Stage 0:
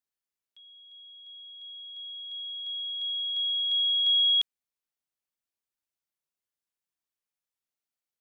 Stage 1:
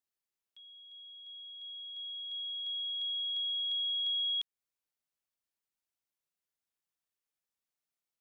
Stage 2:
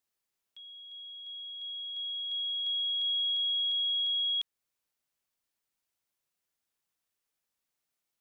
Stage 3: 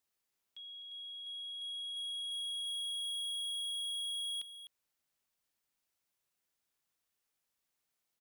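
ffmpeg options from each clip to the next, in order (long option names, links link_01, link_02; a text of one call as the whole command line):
ffmpeg -i in.wav -af "acompressor=threshold=-33dB:ratio=3,volume=-1.5dB" out.wav
ffmpeg -i in.wav -af "alimiter=level_in=8.5dB:limit=-24dB:level=0:latency=1,volume=-8.5dB,volume=5.5dB" out.wav
ffmpeg -i in.wav -af "asoftclip=type=tanh:threshold=-37.5dB,aecho=1:1:254:0.251" out.wav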